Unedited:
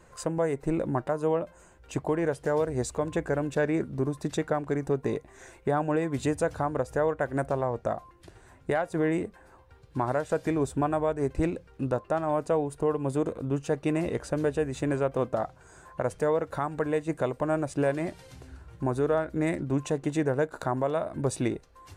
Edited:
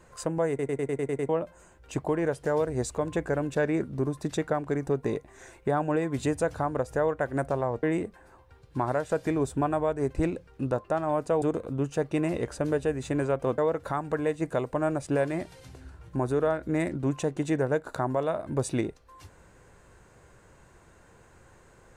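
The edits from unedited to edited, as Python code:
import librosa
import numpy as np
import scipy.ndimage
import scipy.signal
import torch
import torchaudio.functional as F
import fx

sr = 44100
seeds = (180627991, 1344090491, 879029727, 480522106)

y = fx.edit(x, sr, fx.stutter_over(start_s=0.49, slice_s=0.1, count=8),
    fx.cut(start_s=7.83, length_s=1.2),
    fx.cut(start_s=12.62, length_s=0.52),
    fx.cut(start_s=15.3, length_s=0.95), tone=tone)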